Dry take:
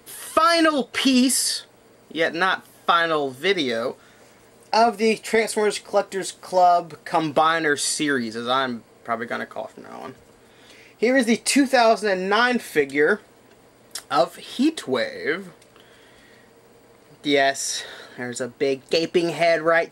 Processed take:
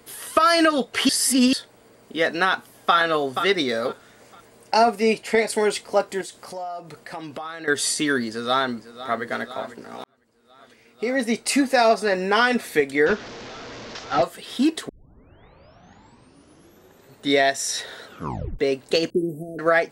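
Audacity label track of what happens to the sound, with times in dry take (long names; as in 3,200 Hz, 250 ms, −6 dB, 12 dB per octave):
1.090000	1.530000	reverse
2.490000	2.960000	delay throw 480 ms, feedback 25%, level −7.5 dB
5.030000	5.500000	high-shelf EQ 7,400 Hz −8 dB
6.210000	7.680000	downward compressor 3 to 1, threshold −35 dBFS
8.270000	9.240000	delay throw 500 ms, feedback 80%, level −14.5 dB
10.040000	12.010000	fade in
13.060000	14.230000	linear delta modulator 32 kbit/s, step −31.5 dBFS
14.890000	14.890000	tape start 2.47 s
18.050000	18.050000	tape stop 0.54 s
19.100000	19.590000	inverse Chebyshev band-stop filter 1,400–3,600 Hz, stop band 80 dB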